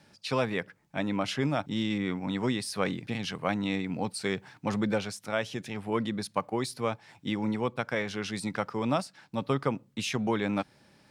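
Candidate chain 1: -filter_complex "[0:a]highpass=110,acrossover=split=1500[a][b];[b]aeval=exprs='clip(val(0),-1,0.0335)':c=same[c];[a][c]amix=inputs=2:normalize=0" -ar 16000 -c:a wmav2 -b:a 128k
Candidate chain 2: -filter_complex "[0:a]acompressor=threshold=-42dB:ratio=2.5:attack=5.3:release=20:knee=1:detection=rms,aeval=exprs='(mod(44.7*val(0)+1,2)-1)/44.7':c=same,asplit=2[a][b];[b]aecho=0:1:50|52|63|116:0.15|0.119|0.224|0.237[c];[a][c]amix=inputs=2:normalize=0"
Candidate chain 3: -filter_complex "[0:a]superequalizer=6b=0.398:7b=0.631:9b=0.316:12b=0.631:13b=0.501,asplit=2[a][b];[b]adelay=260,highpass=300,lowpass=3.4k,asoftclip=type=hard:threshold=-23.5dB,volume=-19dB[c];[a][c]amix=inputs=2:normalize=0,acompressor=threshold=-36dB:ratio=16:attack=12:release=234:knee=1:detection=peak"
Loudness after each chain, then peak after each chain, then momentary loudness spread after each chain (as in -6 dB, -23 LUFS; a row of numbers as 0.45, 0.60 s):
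-32.0, -40.0, -41.0 LUFS; -13.0, -29.5, -21.5 dBFS; 5, 5, 4 LU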